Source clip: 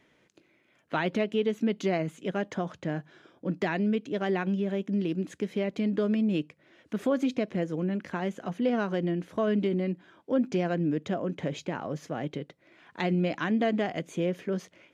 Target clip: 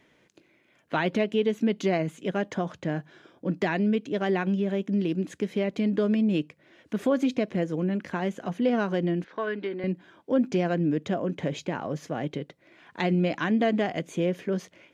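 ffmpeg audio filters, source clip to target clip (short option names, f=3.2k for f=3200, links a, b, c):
-filter_complex "[0:a]asettb=1/sr,asplit=3[a][b][c];[a]atrim=end=9.244[d];[b]atrim=start=9.24:end=9.84,asetpts=PTS-STARTPTS,afade=t=in:d=0.004:c=qsin,afade=t=out:st=0.596:d=0.004:c=qsin,highpass=450,equalizer=f=630:t=q:w=4:g=-8,equalizer=f=1.6k:t=q:w=4:g=6,equalizer=f=3k:t=q:w=4:g=-5,lowpass=f=4.4k:w=0.5412,lowpass=f=4.4k:w=1.3066[e];[c]atrim=start=9.836[f];[d][e]acrossfade=d=0.004:c1=hsin:c2=qsin[g];[g][f]acrossfade=d=0.004:c1=qsin:c2=hsin,bandreject=f=1.3k:w=24,volume=2.5dB"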